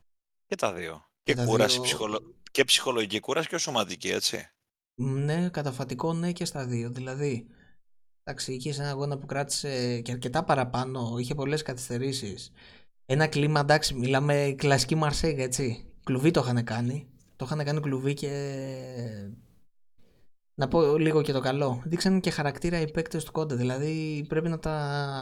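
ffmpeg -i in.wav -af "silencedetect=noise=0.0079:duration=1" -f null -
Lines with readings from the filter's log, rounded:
silence_start: 19.34
silence_end: 20.58 | silence_duration: 1.24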